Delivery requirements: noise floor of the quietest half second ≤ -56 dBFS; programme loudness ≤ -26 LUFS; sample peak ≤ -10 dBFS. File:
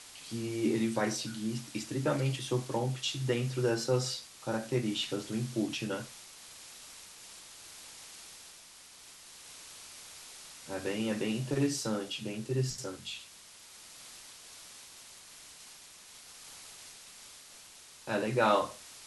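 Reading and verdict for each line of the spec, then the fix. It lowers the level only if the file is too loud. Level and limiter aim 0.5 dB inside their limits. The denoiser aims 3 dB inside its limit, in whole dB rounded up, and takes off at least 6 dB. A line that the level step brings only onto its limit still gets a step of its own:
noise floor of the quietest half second -54 dBFS: fail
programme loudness -33.0 LUFS: pass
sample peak -14.0 dBFS: pass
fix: noise reduction 6 dB, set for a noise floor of -54 dBFS

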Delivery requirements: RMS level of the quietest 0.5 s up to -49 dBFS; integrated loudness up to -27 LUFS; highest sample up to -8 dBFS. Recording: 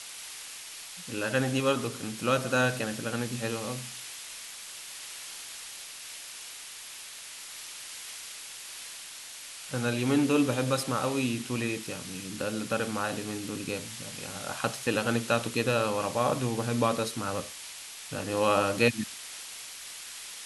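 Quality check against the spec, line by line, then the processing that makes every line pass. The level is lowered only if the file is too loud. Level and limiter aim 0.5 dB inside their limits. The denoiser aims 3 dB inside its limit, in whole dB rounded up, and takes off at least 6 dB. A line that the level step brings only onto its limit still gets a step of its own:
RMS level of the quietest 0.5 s -44 dBFS: fail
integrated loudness -31.5 LUFS: pass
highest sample -9.0 dBFS: pass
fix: noise reduction 8 dB, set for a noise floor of -44 dBFS

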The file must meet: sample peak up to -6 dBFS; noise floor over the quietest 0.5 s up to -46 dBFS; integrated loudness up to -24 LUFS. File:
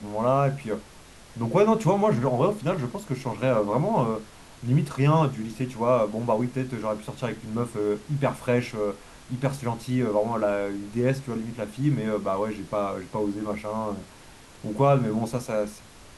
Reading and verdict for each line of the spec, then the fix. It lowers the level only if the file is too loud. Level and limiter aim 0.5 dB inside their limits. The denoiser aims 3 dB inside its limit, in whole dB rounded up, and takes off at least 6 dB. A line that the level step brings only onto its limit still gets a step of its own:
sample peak -9.0 dBFS: pass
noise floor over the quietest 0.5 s -48 dBFS: pass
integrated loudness -26.0 LUFS: pass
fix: none needed

